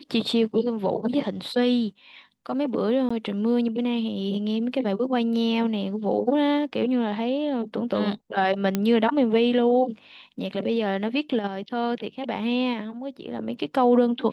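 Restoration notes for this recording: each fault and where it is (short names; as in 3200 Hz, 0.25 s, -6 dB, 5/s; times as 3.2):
3.09–3.1 gap 15 ms
8.75 pop -10 dBFS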